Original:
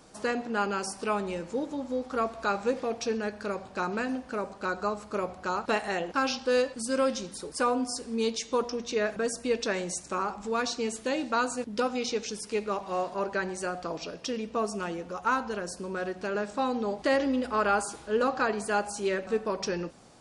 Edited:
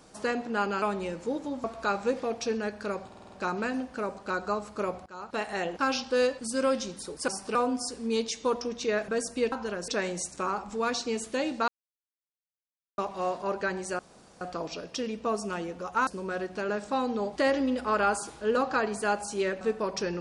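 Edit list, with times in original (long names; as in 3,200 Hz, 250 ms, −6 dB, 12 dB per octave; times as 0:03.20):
0:00.82–0:01.09: move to 0:07.63
0:01.91–0:02.24: remove
0:03.67: stutter 0.05 s, 6 plays
0:05.41–0:06.00: fade in, from −21.5 dB
0:11.40–0:12.70: silence
0:13.71: splice in room tone 0.42 s
0:15.37–0:15.73: move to 0:09.60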